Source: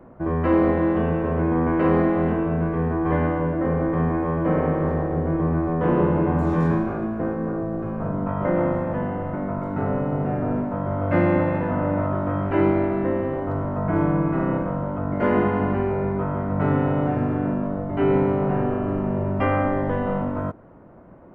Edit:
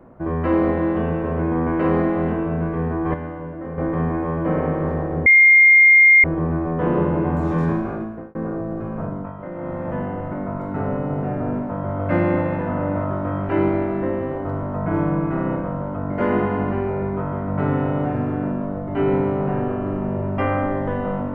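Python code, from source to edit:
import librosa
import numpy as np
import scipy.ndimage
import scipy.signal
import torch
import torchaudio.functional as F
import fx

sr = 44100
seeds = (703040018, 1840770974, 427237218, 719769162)

y = fx.edit(x, sr, fx.clip_gain(start_s=3.14, length_s=0.64, db=-8.5),
    fx.insert_tone(at_s=5.26, length_s=0.98, hz=2120.0, db=-7.5),
    fx.fade_out_span(start_s=6.97, length_s=0.4),
    fx.fade_down_up(start_s=8.03, length_s=0.93, db=-11.0, fade_s=0.37), tone=tone)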